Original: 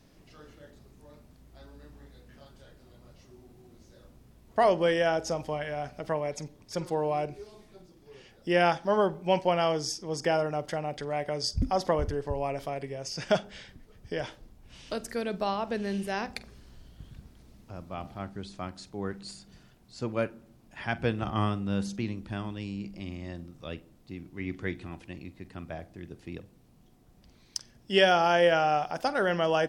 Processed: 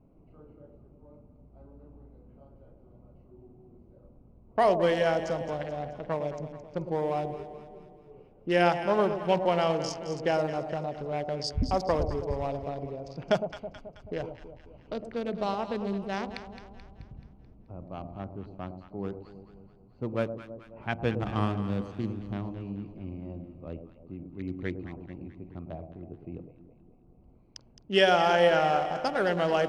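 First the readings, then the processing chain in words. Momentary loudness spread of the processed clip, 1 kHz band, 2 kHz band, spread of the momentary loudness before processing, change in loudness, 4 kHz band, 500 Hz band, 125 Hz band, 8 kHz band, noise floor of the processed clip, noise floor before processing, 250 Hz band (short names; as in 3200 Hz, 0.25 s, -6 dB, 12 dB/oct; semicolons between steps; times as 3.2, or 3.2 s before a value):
19 LU, 0.0 dB, -1.0 dB, 18 LU, 0.0 dB, -1.5 dB, +0.5 dB, +0.5 dB, -7.0 dB, -57 dBFS, -59 dBFS, +0.5 dB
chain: Wiener smoothing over 25 samples; low-pass opened by the level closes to 2000 Hz, open at -24.5 dBFS; echo with dull and thin repeats by turns 0.108 s, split 840 Hz, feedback 71%, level -8 dB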